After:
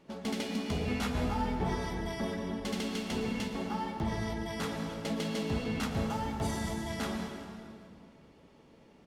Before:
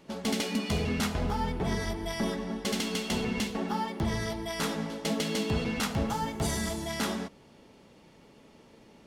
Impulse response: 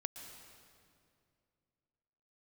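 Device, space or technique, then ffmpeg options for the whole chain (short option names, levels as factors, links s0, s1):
swimming-pool hall: -filter_complex "[1:a]atrim=start_sample=2205[s0];[0:a][s0]afir=irnorm=-1:irlink=0,highshelf=f=3700:g=-6,asettb=1/sr,asplit=3[s1][s2][s3];[s1]atrim=end=0.864[s4];[s2]atrim=start=0.86:end=2.01,asetpts=PTS-STARTPTS,afade=t=in:d=0.004:c=qsin,afade=t=out:st=1.146:d=0.004:c=qsin,asplit=2[s5][s6];[s6]adelay=16,volume=0.596[s7];[s5][s7]amix=inputs=2:normalize=0,atrim=end_sample=50715[s8];[s3]atrim=start=2.006[s9];[s4][s8]acrossfade=d=0.004:c1=hsin:c2=qsin[s10];[s10][s9]acrossfade=d=0.004:c1=qsin:c2=hsin,aecho=1:1:204|408|612|816:0.0794|0.0469|0.0277|0.0163,volume=0.841"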